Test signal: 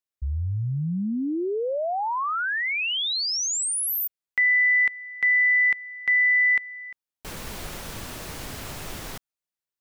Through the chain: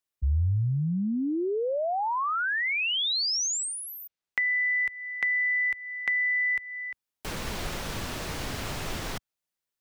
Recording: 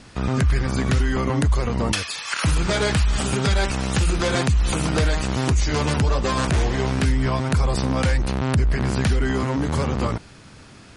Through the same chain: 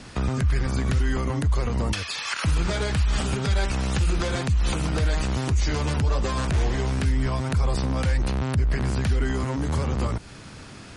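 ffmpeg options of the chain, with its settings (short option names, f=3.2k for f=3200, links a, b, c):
-filter_complex "[0:a]acrossover=split=86|6800[a][b][c];[a]acompressor=threshold=-24dB:ratio=4[d];[b]acompressor=threshold=-30dB:ratio=4[e];[c]acompressor=threshold=-50dB:ratio=4[f];[d][e][f]amix=inputs=3:normalize=0,volume=3dB"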